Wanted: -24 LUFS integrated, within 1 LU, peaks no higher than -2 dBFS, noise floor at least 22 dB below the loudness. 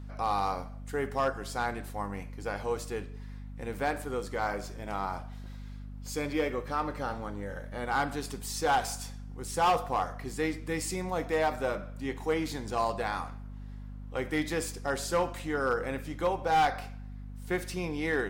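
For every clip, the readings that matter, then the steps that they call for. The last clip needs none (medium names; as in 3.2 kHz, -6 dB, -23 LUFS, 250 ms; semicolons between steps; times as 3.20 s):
clipped samples 0.5%; clipping level -20.5 dBFS; hum 50 Hz; highest harmonic 250 Hz; hum level -40 dBFS; loudness -32.5 LUFS; peak level -20.5 dBFS; loudness target -24.0 LUFS
-> clip repair -20.5 dBFS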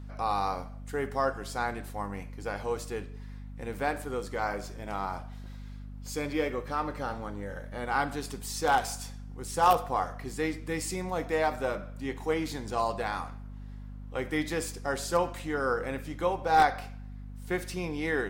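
clipped samples 0.0%; hum 50 Hz; highest harmonic 250 Hz; hum level -40 dBFS
-> de-hum 50 Hz, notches 5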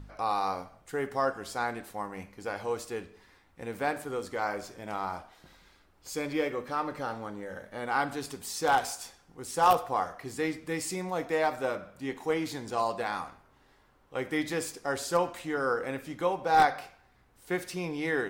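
hum not found; loudness -31.5 LUFS; peak level -11.0 dBFS; loudness target -24.0 LUFS
-> trim +7.5 dB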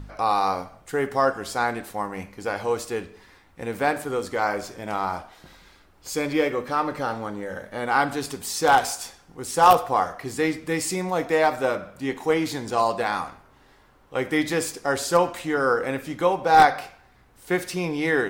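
loudness -24.0 LUFS; peak level -3.5 dBFS; noise floor -56 dBFS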